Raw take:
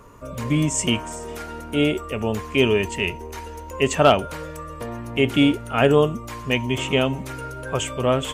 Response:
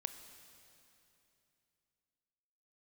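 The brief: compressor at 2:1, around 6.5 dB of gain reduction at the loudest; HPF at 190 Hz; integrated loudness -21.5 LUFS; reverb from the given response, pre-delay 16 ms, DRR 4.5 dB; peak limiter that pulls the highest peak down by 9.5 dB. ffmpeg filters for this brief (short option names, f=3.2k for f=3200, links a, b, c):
-filter_complex "[0:a]highpass=190,acompressor=threshold=-21dB:ratio=2,alimiter=limit=-16.5dB:level=0:latency=1,asplit=2[a][b];[1:a]atrim=start_sample=2205,adelay=16[c];[b][c]afir=irnorm=-1:irlink=0,volume=-2.5dB[d];[a][d]amix=inputs=2:normalize=0,volume=6.5dB"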